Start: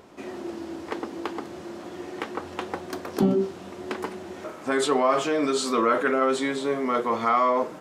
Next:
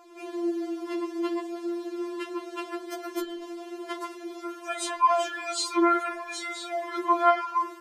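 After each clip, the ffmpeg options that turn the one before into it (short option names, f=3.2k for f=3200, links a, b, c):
-af "bass=f=250:g=-8,treble=f=4k:g=1,afftfilt=real='re*4*eq(mod(b,16),0)':imag='im*4*eq(mod(b,16),0)':win_size=2048:overlap=0.75,volume=1dB"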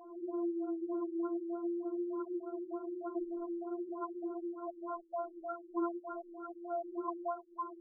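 -af "acompressor=threshold=-38dB:ratio=3,afftfilt=real='re*lt(b*sr/1024,390*pow(1600/390,0.5+0.5*sin(2*PI*3.3*pts/sr)))':imag='im*lt(b*sr/1024,390*pow(1600/390,0.5+0.5*sin(2*PI*3.3*pts/sr)))':win_size=1024:overlap=0.75,volume=1.5dB"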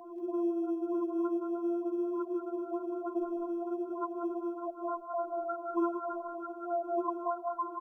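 -filter_complex "[0:a]acrossover=split=140|480[a][b][c];[a]acrusher=samples=15:mix=1:aa=0.000001[d];[c]aecho=1:1:162|184|200|392|429:0.224|0.562|0.316|0.158|0.211[e];[d][b][e]amix=inputs=3:normalize=0,volume=4.5dB"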